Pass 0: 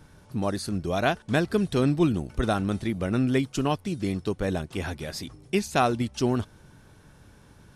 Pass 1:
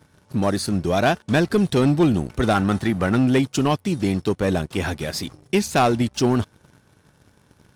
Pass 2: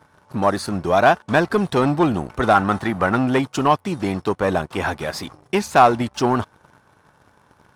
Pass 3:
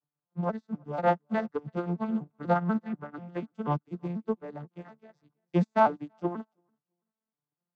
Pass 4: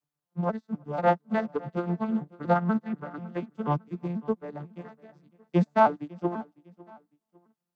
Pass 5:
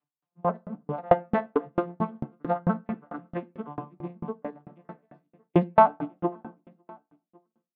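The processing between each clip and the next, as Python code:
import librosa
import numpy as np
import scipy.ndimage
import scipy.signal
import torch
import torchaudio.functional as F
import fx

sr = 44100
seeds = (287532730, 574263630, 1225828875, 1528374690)

y1 = fx.spec_box(x, sr, start_s=2.55, length_s=0.6, low_hz=690.0, high_hz=2000.0, gain_db=6)
y1 = scipy.signal.sosfilt(scipy.signal.butter(2, 74.0, 'highpass', fs=sr, output='sos'), y1)
y1 = fx.leveller(y1, sr, passes=2)
y2 = fx.peak_eq(y1, sr, hz=1000.0, db=13.0, octaves=1.9)
y2 = y2 * 10.0 ** (-4.0 / 20.0)
y3 = fx.vocoder_arp(y2, sr, chord='minor triad', root=50, every_ms=244)
y3 = fx.echo_feedback(y3, sr, ms=334, feedback_pct=22, wet_db=-17.5)
y3 = fx.upward_expand(y3, sr, threshold_db=-34.0, expansion=2.5)
y3 = y3 * 10.0 ** (-5.0 / 20.0)
y4 = fx.echo_feedback(y3, sr, ms=553, feedback_pct=35, wet_db=-22.0)
y4 = y4 * 10.0 ** (2.0 / 20.0)
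y5 = fx.cabinet(y4, sr, low_hz=100.0, low_slope=12, high_hz=3300.0, hz=(270.0, 710.0, 1100.0), db=(6, 5, 5))
y5 = fx.room_shoebox(y5, sr, seeds[0], volume_m3=130.0, walls='mixed', distance_m=0.36)
y5 = fx.tremolo_decay(y5, sr, direction='decaying', hz=4.5, depth_db=36)
y5 = y5 * 10.0 ** (5.0 / 20.0)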